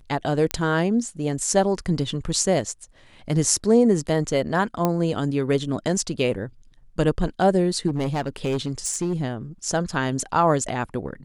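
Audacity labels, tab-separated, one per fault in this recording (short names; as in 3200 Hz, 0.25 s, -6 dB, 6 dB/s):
0.510000	0.510000	pop -8 dBFS
4.850000	4.850000	pop -8 dBFS
7.870000	9.130000	clipped -19.5 dBFS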